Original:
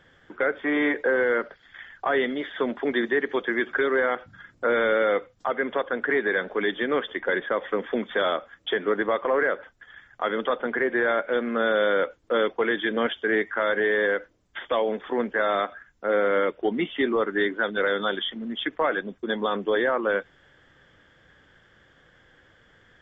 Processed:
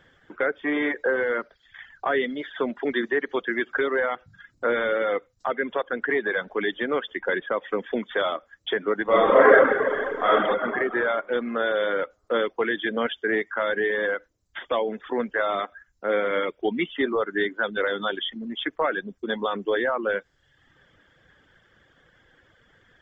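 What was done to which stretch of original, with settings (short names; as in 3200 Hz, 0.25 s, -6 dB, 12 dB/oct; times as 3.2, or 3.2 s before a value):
9.03–10.32 reverb throw, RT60 2.6 s, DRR -10.5 dB
16.07–16.83 small resonant body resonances 2300/3300 Hz, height 10 dB, ringing for 20 ms
whole clip: reverb removal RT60 0.75 s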